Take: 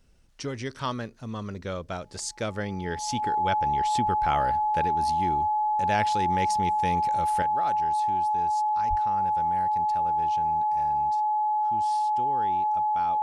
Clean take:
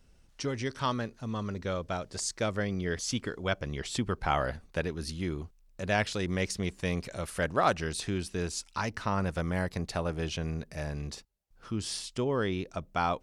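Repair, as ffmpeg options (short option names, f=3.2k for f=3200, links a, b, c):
-filter_complex "[0:a]bandreject=f=850:w=30,asplit=3[a][b][c];[a]afade=t=out:st=8.89:d=0.02[d];[b]highpass=f=140:w=0.5412,highpass=f=140:w=1.3066,afade=t=in:st=8.89:d=0.02,afade=t=out:st=9.01:d=0.02[e];[c]afade=t=in:st=9.01:d=0.02[f];[d][e][f]amix=inputs=3:normalize=0,asetnsamples=n=441:p=0,asendcmd='7.42 volume volume 10dB',volume=0dB"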